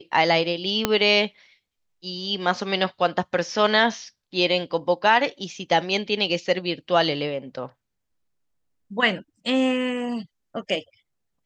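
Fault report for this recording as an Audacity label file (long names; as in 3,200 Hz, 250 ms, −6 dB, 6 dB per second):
0.850000	0.850000	click −3 dBFS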